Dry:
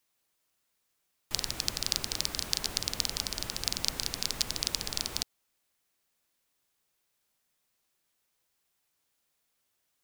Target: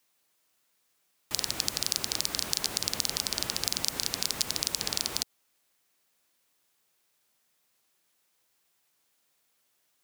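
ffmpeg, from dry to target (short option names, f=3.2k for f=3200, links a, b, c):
-filter_complex "[0:a]highpass=f=140:p=1,acrossover=split=6400[a][b];[a]alimiter=limit=-15dB:level=0:latency=1:release=86[c];[c][b]amix=inputs=2:normalize=0,volume=5dB"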